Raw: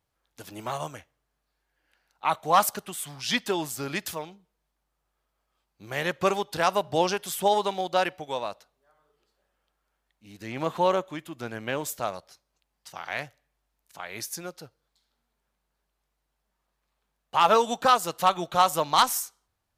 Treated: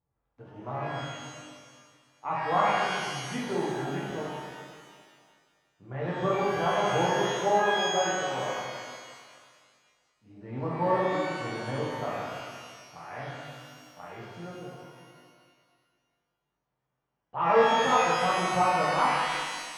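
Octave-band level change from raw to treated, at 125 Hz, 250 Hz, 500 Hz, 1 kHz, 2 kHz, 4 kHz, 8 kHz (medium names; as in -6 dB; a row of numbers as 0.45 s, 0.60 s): +3.5 dB, +0.5 dB, 0.0 dB, -1.5 dB, +2.0 dB, -3.0 dB, -5.5 dB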